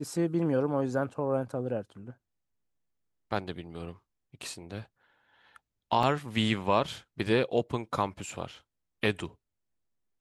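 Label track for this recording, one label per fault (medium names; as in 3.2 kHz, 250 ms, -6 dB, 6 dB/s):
6.030000	6.030000	dropout 2.1 ms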